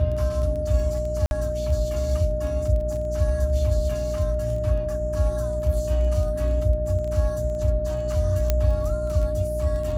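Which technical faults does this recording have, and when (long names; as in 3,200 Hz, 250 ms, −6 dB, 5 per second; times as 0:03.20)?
surface crackle 12 per second −30 dBFS
mains hum 60 Hz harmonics 6 −29 dBFS
whistle 610 Hz −26 dBFS
0:01.26–0:01.31: drop-out 51 ms
0:08.50: click −7 dBFS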